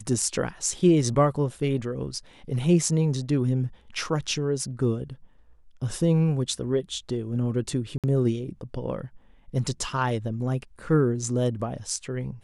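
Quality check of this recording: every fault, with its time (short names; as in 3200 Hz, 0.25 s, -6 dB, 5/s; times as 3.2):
7.98–8.04 gap 57 ms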